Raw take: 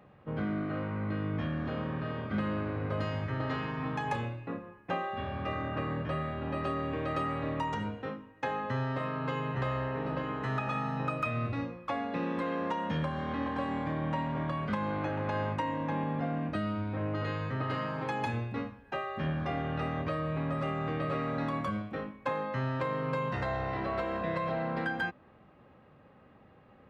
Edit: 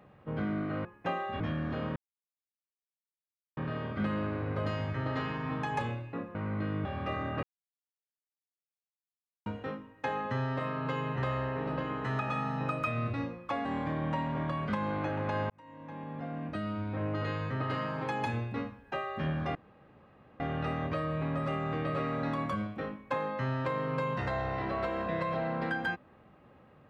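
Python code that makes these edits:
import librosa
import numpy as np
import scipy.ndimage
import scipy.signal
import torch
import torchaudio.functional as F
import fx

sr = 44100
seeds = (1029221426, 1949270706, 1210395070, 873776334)

y = fx.edit(x, sr, fx.swap(start_s=0.85, length_s=0.5, other_s=4.69, other_length_s=0.55),
    fx.insert_silence(at_s=1.91, length_s=1.61),
    fx.silence(start_s=5.82, length_s=2.03),
    fx.cut(start_s=12.04, length_s=1.61),
    fx.fade_in_span(start_s=15.5, length_s=1.53),
    fx.insert_room_tone(at_s=19.55, length_s=0.85), tone=tone)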